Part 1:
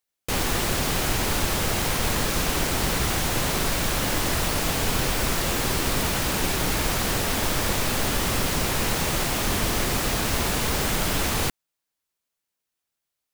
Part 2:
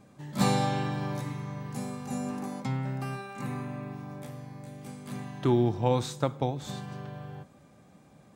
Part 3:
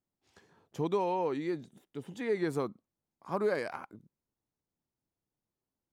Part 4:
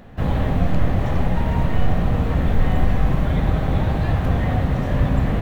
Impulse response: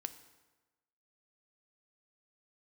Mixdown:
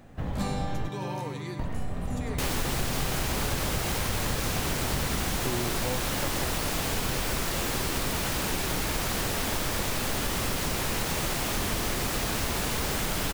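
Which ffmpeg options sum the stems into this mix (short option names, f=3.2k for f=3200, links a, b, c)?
-filter_complex "[0:a]adelay=2100,volume=2.5dB[a];[1:a]volume=-0.5dB[b];[2:a]crystalizer=i=8.5:c=0,volume=-8dB,asplit=2[c][d];[d]volume=-7.5dB[e];[3:a]volume=-8.5dB,asplit=3[f][g][h];[f]atrim=end=0.89,asetpts=PTS-STARTPTS,afade=t=out:st=0.886:d=0.004:c=hsin[i];[g]atrim=start=0.89:end=1.59,asetpts=PTS-STARTPTS,volume=0[j];[h]atrim=start=1.59,asetpts=PTS-STARTPTS,afade=t=in:d=0.004:c=hsin[k];[i][j][k]concat=n=3:v=0:a=1[l];[e]aecho=0:1:102:1[m];[a][b][c][l][m]amix=inputs=5:normalize=0,acompressor=threshold=-29dB:ratio=2.5"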